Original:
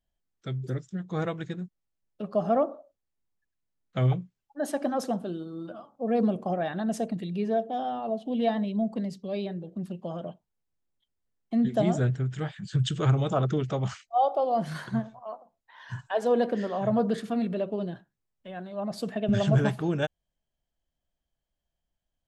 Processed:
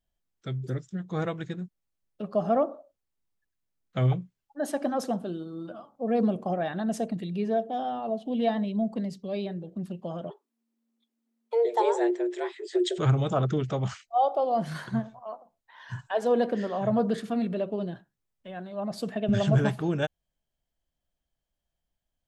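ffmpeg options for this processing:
-filter_complex "[0:a]asplit=3[a][b][c];[a]afade=t=out:st=10.29:d=0.02[d];[b]afreqshift=230,afade=t=in:st=10.29:d=0.02,afade=t=out:st=12.98:d=0.02[e];[c]afade=t=in:st=12.98:d=0.02[f];[d][e][f]amix=inputs=3:normalize=0"

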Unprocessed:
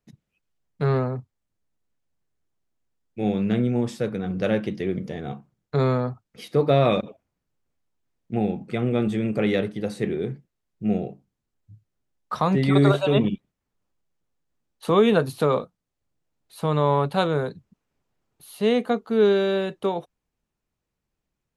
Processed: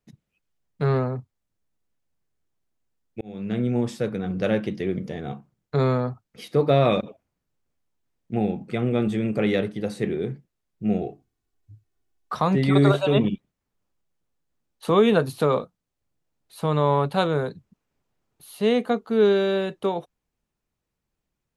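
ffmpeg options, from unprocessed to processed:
-filter_complex "[0:a]asettb=1/sr,asplit=3[a][b][c];[a]atrim=end=11.014[d];[b]atrim=start=11.01:end=12.34,asetpts=PTS-STARTPTS,afade=t=in:d=0.004:c=qsin,afade=t=out:st=1.326:d=0.004:c=qsin,aecho=1:1:2.7:0.65,atrim=end_sample=58653[e];[c]atrim=start=12.336[f];[d][e]acrossfade=d=0.004:c1=hsin:c2=qsin[g];[g][f]acrossfade=d=0.004:c1=qsin:c2=hsin,asplit=2[h][i];[h]atrim=end=3.21,asetpts=PTS-STARTPTS,afade=t=out:st=3.206:d=0.004:c=hsin[j];[i]atrim=start=3.21,asetpts=PTS-STARTPTS,afade=t=in:d=0.52[k];[j][k]concat=n=2:v=0:a=1"

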